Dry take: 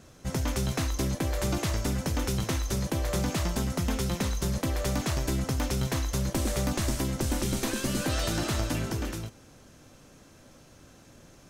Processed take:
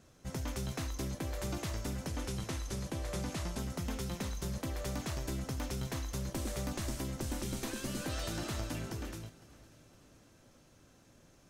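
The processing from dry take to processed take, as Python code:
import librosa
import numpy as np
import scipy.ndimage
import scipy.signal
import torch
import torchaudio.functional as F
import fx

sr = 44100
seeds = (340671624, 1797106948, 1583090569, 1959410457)

y = fx.cvsd(x, sr, bps=64000, at=(2.07, 3.59))
y = fx.echo_feedback(y, sr, ms=508, feedback_pct=53, wet_db=-21.0)
y = F.gain(torch.from_numpy(y), -9.0).numpy()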